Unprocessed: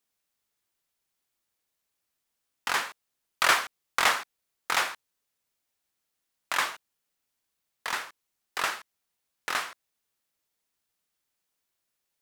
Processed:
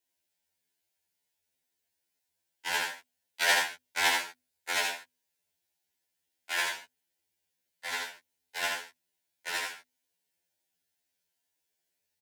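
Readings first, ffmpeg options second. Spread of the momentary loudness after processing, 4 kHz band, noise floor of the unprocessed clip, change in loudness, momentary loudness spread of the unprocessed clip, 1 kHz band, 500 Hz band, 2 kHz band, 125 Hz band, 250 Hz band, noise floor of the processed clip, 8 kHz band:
17 LU, −0.5 dB, −82 dBFS, −2.0 dB, 18 LU, −5.5 dB, −1.5 dB, −1.5 dB, can't be measured, −3.0 dB, −83 dBFS, −0.5 dB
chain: -af "afreqshift=51,asuperstop=centerf=1200:order=4:qfactor=2.9,bandreject=frequency=50:width_type=h:width=6,bandreject=frequency=100:width_type=h:width=6,bandreject=frequency=150:width_type=h:width=6,bandreject=frequency=200:width_type=h:width=6,bandreject=frequency=250:width_type=h:width=6,aecho=1:1:81:0.631,afftfilt=real='re*2*eq(mod(b,4),0)':imag='im*2*eq(mod(b,4),0)':win_size=2048:overlap=0.75"

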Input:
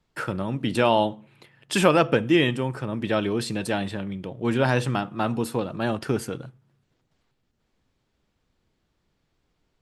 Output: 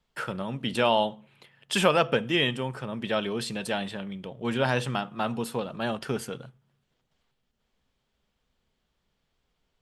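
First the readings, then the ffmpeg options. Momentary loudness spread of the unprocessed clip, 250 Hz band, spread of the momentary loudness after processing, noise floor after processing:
10 LU, −6.0 dB, 11 LU, −78 dBFS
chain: -af "equalizer=frequency=100:width_type=o:width=0.33:gain=-12,equalizer=frequency=160:width_type=o:width=0.33:gain=-3,equalizer=frequency=315:width_type=o:width=0.33:gain=-10,equalizer=frequency=3150:width_type=o:width=0.33:gain=5,volume=-2.5dB"

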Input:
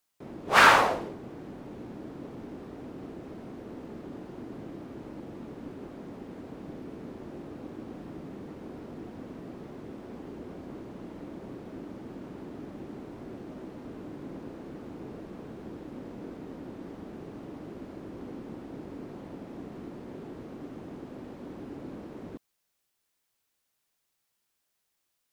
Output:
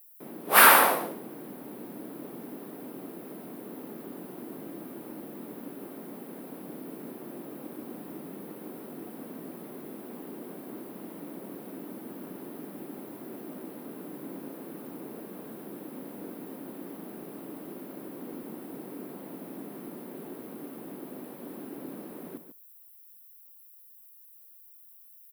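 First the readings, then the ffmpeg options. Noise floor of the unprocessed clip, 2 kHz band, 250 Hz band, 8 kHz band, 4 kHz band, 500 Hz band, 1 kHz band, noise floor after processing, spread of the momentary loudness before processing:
−79 dBFS, +0.5 dB, 0.0 dB, can't be measured, +0.5 dB, +0.5 dB, +0.5 dB, −54 dBFS, 2 LU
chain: -af "highpass=frequency=170:width=0.5412,highpass=frequency=170:width=1.3066,aexciter=amount=12.5:drive=8:freq=9800,aecho=1:1:144:0.316"

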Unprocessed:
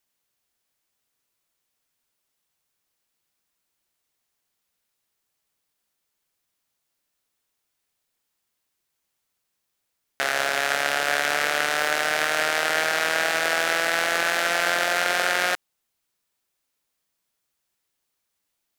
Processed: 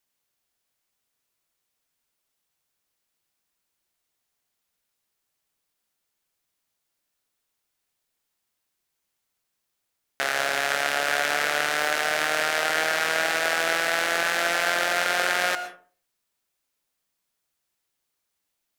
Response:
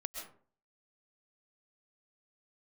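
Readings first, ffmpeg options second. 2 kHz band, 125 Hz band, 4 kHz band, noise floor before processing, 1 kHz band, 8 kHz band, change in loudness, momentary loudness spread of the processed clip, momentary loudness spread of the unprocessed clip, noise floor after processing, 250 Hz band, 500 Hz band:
−1.0 dB, −1.5 dB, −1.0 dB, −78 dBFS, −1.0 dB, −1.0 dB, −1.0 dB, 2 LU, 2 LU, −80 dBFS, −1.0 dB, −1.0 dB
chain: -filter_complex "[0:a]asplit=2[link_01][link_02];[1:a]atrim=start_sample=2205,asetrate=48510,aresample=44100[link_03];[link_02][link_03]afir=irnorm=-1:irlink=0,volume=-2dB[link_04];[link_01][link_04]amix=inputs=2:normalize=0,volume=-5dB"

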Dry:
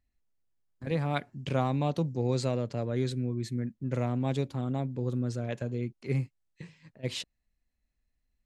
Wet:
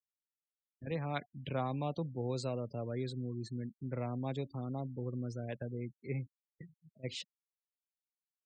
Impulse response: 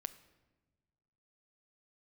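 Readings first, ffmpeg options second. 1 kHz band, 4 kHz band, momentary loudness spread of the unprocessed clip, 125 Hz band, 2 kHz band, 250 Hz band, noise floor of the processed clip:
−6.0 dB, −6.5 dB, 11 LU, −8.5 dB, −7.0 dB, −8.0 dB, below −85 dBFS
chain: -filter_complex "[0:a]acrossover=split=420[link_01][link_02];[link_01]acompressor=threshold=-34dB:ratio=1.5[link_03];[link_03][link_02]amix=inputs=2:normalize=0,afftfilt=real='re*gte(hypot(re,im),0.00891)':imag='im*gte(hypot(re,im),0.00891)':win_size=1024:overlap=0.75,volume=-6dB"

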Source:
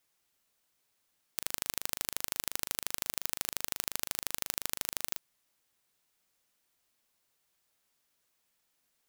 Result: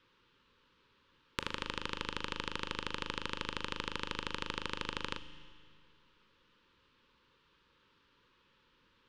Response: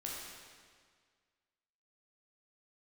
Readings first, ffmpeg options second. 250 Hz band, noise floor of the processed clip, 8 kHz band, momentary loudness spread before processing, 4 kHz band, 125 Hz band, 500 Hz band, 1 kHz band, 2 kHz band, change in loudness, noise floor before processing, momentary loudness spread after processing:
+8.0 dB, −71 dBFS, −18.5 dB, 3 LU, 0.0 dB, +7.0 dB, +5.0 dB, +5.0 dB, +3.0 dB, −5.0 dB, −77 dBFS, 4 LU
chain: -filter_complex "[0:a]lowpass=frequency=3300:width=0.5412,lowpass=frequency=3300:width=1.3066,equalizer=frequency=2100:width_type=o:width=0.53:gain=-8,acompressor=threshold=-48dB:ratio=6,asuperstop=centerf=700:order=12:qfactor=2.2,asplit=2[link_01][link_02];[1:a]atrim=start_sample=2205,asetrate=36162,aresample=44100,lowshelf=frequency=95:gain=10[link_03];[link_02][link_03]afir=irnorm=-1:irlink=0,volume=-11dB[link_04];[link_01][link_04]amix=inputs=2:normalize=0,volume=15dB"

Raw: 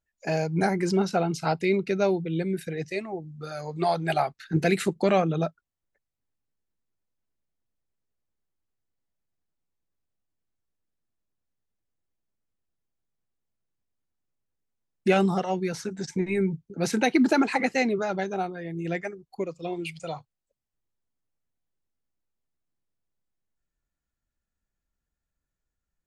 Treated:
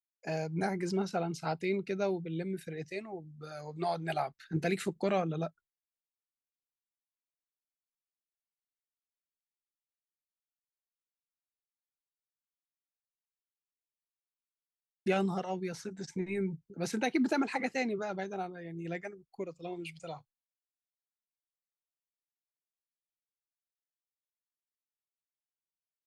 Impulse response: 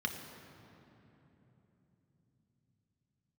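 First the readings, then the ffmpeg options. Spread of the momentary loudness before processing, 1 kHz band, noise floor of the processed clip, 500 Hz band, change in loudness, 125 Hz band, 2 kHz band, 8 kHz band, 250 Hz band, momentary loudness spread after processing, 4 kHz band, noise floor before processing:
12 LU, −8.5 dB, below −85 dBFS, −8.5 dB, −8.5 dB, −8.5 dB, −8.5 dB, −8.5 dB, −8.5 dB, 12 LU, −8.5 dB, below −85 dBFS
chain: -af "agate=range=-33dB:threshold=-47dB:ratio=3:detection=peak,volume=-8.5dB"

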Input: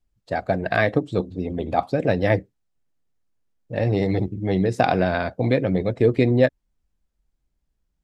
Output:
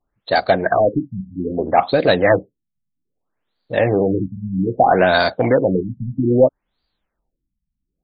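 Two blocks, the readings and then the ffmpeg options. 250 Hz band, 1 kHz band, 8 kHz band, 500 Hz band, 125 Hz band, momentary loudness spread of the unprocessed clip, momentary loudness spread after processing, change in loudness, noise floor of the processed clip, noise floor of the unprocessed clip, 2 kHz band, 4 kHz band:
+2.5 dB, +8.0 dB, can't be measured, +5.5 dB, −1.0 dB, 8 LU, 10 LU, +5.0 dB, −79 dBFS, −75 dBFS, +5.5 dB, +9.5 dB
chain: -filter_complex "[0:a]aexciter=amount=8.5:drive=4.1:freq=4000,asplit=2[link_01][link_02];[link_02]highpass=frequency=720:poles=1,volume=19dB,asoftclip=type=tanh:threshold=-0.5dB[link_03];[link_01][link_03]amix=inputs=2:normalize=0,lowpass=frequency=4800:poles=1,volume=-6dB,afftfilt=real='re*lt(b*sr/1024,230*pow(4800/230,0.5+0.5*sin(2*PI*0.62*pts/sr)))':imag='im*lt(b*sr/1024,230*pow(4800/230,0.5+0.5*sin(2*PI*0.62*pts/sr)))':win_size=1024:overlap=0.75"

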